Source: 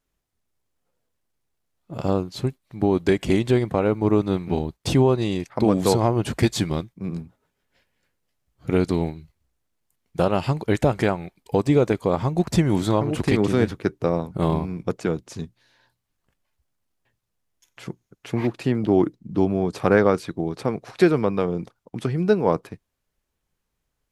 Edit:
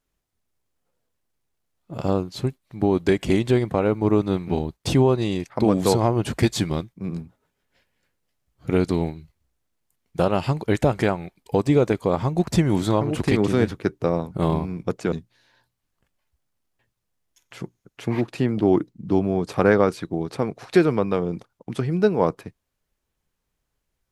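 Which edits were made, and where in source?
15.12–15.38 cut

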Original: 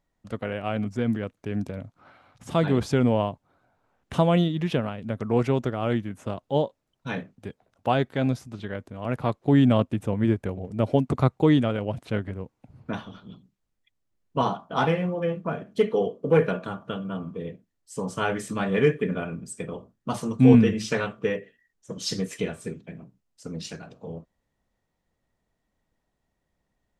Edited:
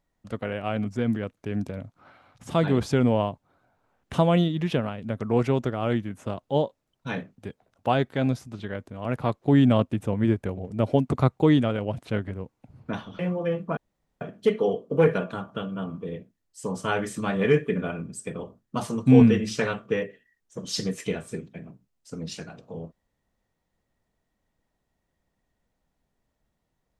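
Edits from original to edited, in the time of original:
13.19–14.96 cut
15.54 insert room tone 0.44 s

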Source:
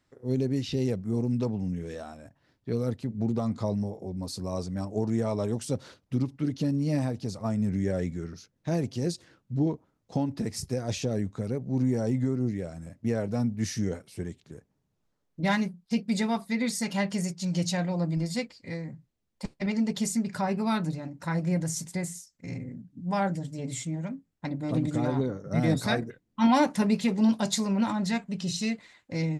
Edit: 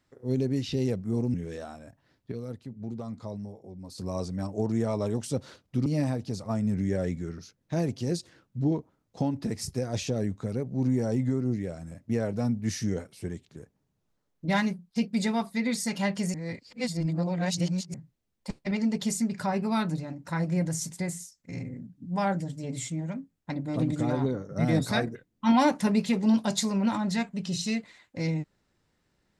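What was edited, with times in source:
1.34–1.72 cut
2.7–4.36 gain -8.5 dB
6.24–6.81 cut
17.29–18.89 reverse

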